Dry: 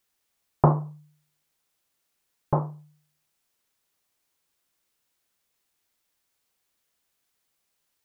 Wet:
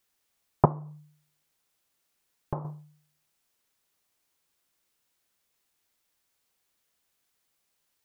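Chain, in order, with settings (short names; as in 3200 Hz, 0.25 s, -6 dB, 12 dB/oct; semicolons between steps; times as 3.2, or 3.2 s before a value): 0.65–2.65 compressor 12:1, threshold -29 dBFS, peak gain reduction 15 dB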